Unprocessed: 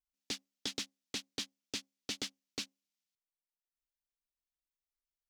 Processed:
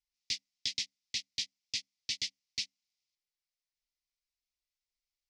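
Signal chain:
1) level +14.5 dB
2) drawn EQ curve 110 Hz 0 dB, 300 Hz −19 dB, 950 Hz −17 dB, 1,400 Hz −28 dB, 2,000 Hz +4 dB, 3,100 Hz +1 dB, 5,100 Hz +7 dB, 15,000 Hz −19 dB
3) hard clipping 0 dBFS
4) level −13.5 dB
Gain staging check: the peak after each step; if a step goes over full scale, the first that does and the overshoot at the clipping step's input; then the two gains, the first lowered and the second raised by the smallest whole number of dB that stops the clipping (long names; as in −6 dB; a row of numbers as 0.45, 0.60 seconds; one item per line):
−5.5, −2.0, −2.0, −15.5 dBFS
no step passes full scale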